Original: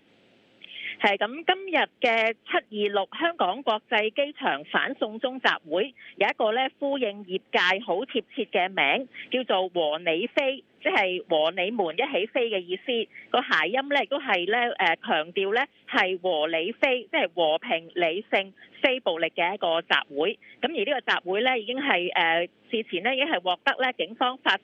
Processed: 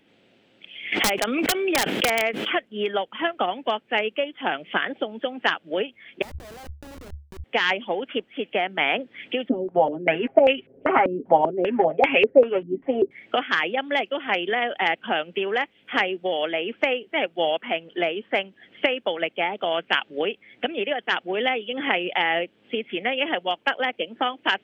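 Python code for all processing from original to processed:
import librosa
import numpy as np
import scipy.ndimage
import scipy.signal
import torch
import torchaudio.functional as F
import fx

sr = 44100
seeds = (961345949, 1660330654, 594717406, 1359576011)

y = fx.chain(x, sr, fx.highpass(hz=170.0, slope=12),
    fx.overflow_wrap(gain_db=13.0),
    fx.pre_swell(db_per_s=28.0), at=(0.92, 2.55))
y = fx.chain(y, sr, fx.schmitt(flips_db=-26.0),
    fx.peak_eq(hz=72.0, db=13.0, octaves=0.26),
    fx.over_compress(threshold_db=-39.0, ratio=-1.0), at=(6.22, 7.44))
y = fx.chain(y, sr, fx.low_shelf(hz=180.0, db=10.0),
    fx.comb(ms=7.4, depth=0.7),
    fx.filter_held_lowpass(hz=5.1, low_hz=270.0, high_hz=2400.0), at=(9.49, 13.11))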